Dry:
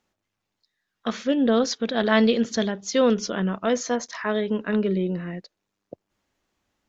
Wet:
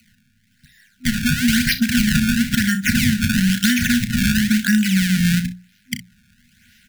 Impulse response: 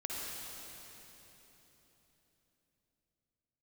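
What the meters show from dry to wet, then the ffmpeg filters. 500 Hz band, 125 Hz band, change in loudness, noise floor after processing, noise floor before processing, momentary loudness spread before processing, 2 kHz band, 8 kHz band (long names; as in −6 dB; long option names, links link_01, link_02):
below −30 dB, +13.0 dB, +6.0 dB, −61 dBFS, −82 dBFS, 10 LU, +11.0 dB, can't be measured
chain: -filter_complex "[0:a]acrossover=split=730[link_01][link_02];[link_01]acompressor=threshold=-32dB:ratio=6[link_03];[link_03][link_02]amix=inputs=2:normalize=0,acrusher=samples=25:mix=1:aa=0.000001:lfo=1:lforange=40:lforate=1,afftfilt=real='re*(1-between(b*sr/4096,250,1400))':imag='im*(1-between(b*sr/4096,250,1400))':win_size=4096:overlap=0.75,lowshelf=frequency=120:gain=-7,bandreject=frequency=60:width_type=h:width=6,bandreject=frequency=120:width_type=h:width=6,bandreject=frequency=180:width_type=h:width=6,aecho=1:1:33|62:0.282|0.141,acrossover=split=120|660[link_04][link_05][link_06];[link_04]acompressor=threshold=-50dB:ratio=4[link_07];[link_05]acompressor=threshold=-43dB:ratio=4[link_08];[link_06]acompressor=threshold=-46dB:ratio=4[link_09];[link_07][link_08][link_09]amix=inputs=3:normalize=0,alimiter=level_in=27dB:limit=-1dB:release=50:level=0:latency=1,volume=-1dB"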